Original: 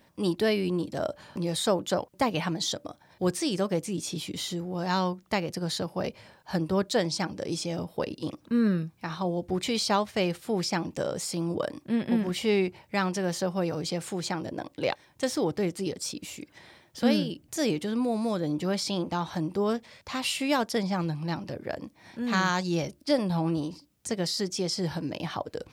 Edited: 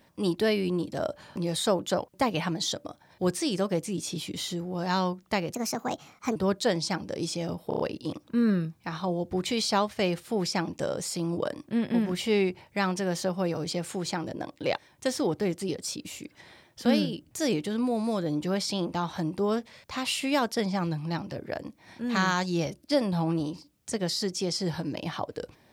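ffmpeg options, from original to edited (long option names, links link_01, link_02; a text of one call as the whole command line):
ffmpeg -i in.wav -filter_complex "[0:a]asplit=7[link_01][link_02][link_03][link_04][link_05][link_06][link_07];[link_01]atrim=end=5.544[link_08];[link_02]atrim=start=5.54:end=6.65,asetpts=PTS-STARTPTS,asetrate=59976,aresample=44100,atrim=end_sample=35993,asetpts=PTS-STARTPTS[link_09];[link_03]atrim=start=6.646:end=8.002[link_10];[link_04]atrim=start=7.968:end=8.002[link_11];[link_05]atrim=start=7.968:end=8.002[link_12];[link_06]atrim=start=7.968:end=8.002[link_13];[link_07]atrim=start=7.968[link_14];[link_08][link_09]acrossfade=duration=0.004:curve1=hsin:curve2=hsin[link_15];[link_15][link_10]acrossfade=duration=0.004:curve1=hsin:curve2=hsin[link_16];[link_16][link_11]acrossfade=duration=0.004:curve1=hsin:curve2=hsin[link_17];[link_17][link_12]acrossfade=duration=0.004:curve1=hsin:curve2=hsin[link_18];[link_18][link_13]acrossfade=duration=0.004:curve1=hsin:curve2=hsin[link_19];[link_19][link_14]acrossfade=duration=0.004:curve1=hsin:curve2=hsin" out.wav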